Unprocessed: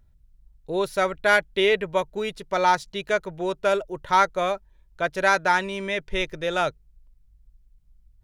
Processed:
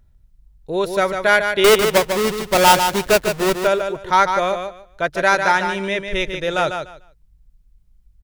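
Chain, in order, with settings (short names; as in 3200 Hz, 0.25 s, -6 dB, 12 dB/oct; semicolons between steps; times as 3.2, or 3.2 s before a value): 1.64–3.58 half-waves squared off; on a send: feedback echo 0.148 s, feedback 19%, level -7 dB; on the sum: gain +4 dB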